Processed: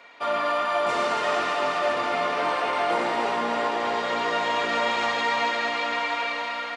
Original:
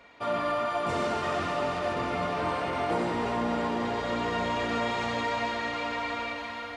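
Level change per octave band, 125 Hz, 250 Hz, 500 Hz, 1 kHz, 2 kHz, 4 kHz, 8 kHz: -9.5, -2.5, +4.0, +5.5, +7.0, +7.0, +5.5 dB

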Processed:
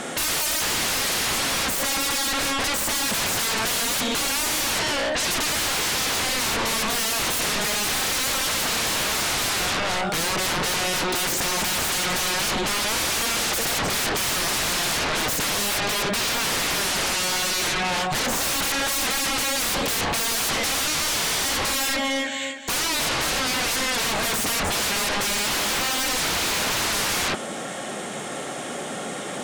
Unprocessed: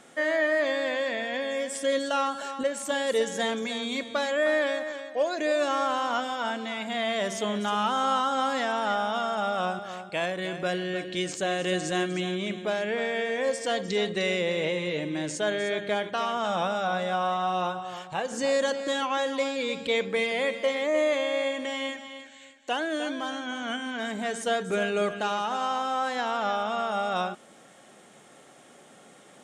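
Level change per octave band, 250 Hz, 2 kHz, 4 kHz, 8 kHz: +1.0, +6.5, +11.5, +19.0 dB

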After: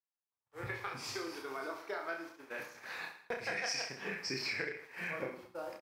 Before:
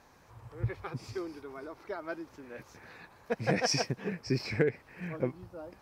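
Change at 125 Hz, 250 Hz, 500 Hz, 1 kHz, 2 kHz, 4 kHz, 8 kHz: -16.0, -11.0, -7.5, -2.5, +1.5, -2.5, -4.0 dB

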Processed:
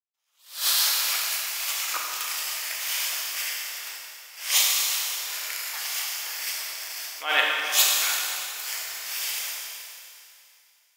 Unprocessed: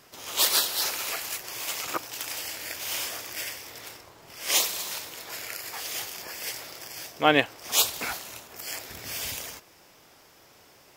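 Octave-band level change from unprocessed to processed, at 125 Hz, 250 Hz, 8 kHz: under -30 dB, -19.5 dB, +4.5 dB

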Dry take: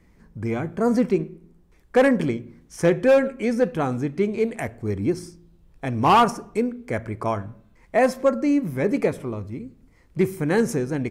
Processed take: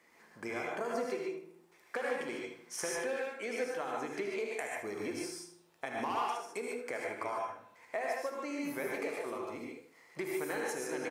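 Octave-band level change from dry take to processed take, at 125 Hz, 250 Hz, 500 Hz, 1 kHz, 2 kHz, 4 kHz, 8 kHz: -28.0, -19.0, -14.5, -14.0, -8.5, -10.0, -3.5 dB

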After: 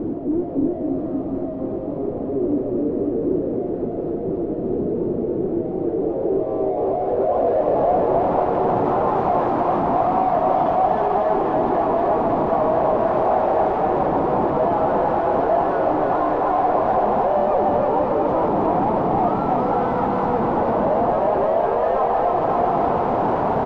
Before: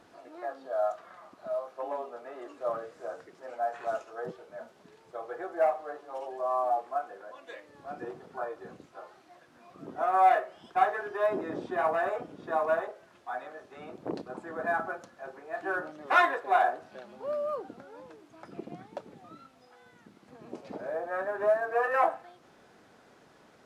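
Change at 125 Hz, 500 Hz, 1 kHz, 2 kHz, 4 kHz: +25.5 dB, +14.0 dB, +11.5 dB, -0.5 dB, n/a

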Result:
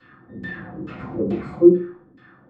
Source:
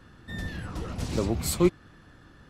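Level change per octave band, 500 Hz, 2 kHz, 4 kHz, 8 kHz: +10.0 dB, +4.0 dB, under -10 dB, under -30 dB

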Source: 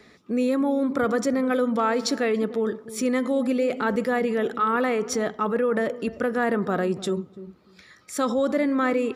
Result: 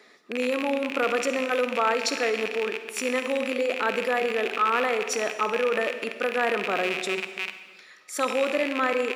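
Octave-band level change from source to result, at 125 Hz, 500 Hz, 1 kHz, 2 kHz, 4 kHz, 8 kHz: under -10 dB, -1.5 dB, +0.5 dB, +4.0 dB, +5.0 dB, +0.5 dB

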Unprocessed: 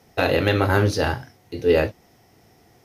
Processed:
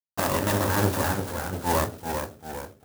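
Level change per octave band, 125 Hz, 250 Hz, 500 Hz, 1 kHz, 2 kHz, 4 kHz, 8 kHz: -4.5, -3.5, -8.0, +0.5, -5.5, -4.0, +8.0 dB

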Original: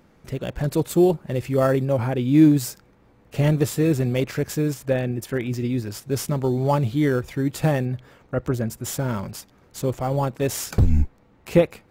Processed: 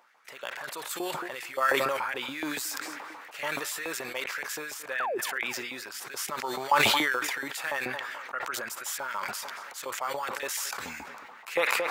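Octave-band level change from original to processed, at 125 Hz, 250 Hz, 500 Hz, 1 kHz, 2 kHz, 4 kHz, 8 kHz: -30.0, -20.0, -11.5, +1.0, +6.5, +5.0, -1.0 dB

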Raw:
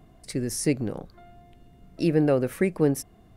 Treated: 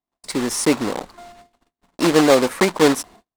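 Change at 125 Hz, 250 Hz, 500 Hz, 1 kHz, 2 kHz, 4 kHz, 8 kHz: -2.0, +6.0, +8.0, +16.5, +13.0, +16.0, +9.0 dB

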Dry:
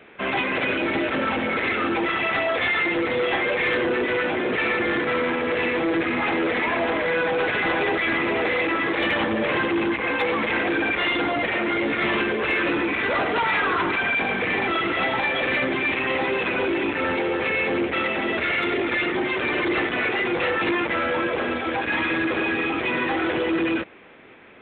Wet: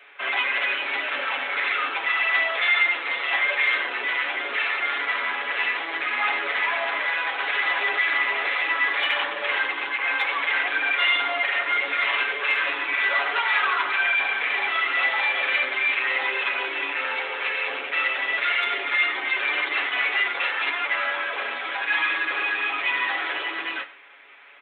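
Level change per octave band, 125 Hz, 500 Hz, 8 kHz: under -30 dB, -11.5 dB, n/a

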